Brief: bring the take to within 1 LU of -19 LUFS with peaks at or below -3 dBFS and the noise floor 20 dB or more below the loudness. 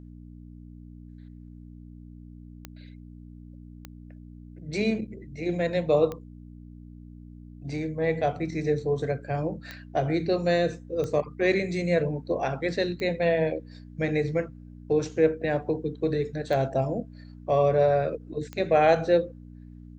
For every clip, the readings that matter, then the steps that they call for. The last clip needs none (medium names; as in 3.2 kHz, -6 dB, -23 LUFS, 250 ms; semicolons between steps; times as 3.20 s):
clicks found 8; hum 60 Hz; highest harmonic 300 Hz; hum level -42 dBFS; loudness -26.5 LUFS; peak level -8.5 dBFS; loudness target -19.0 LUFS
-> de-click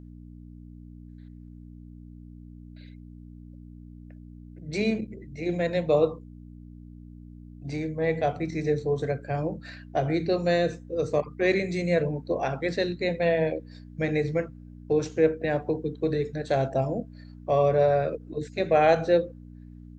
clicks found 0; hum 60 Hz; highest harmonic 300 Hz; hum level -42 dBFS
-> de-hum 60 Hz, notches 5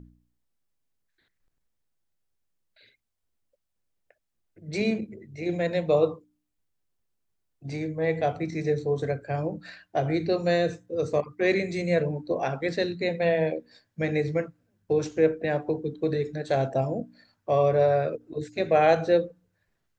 hum not found; loudness -26.5 LUFS; peak level -8.5 dBFS; loudness target -19.0 LUFS
-> trim +7.5 dB; peak limiter -3 dBFS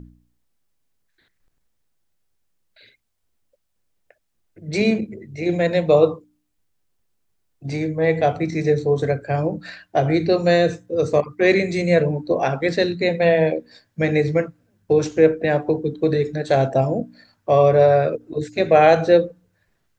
loudness -19.0 LUFS; peak level -3.0 dBFS; noise floor -70 dBFS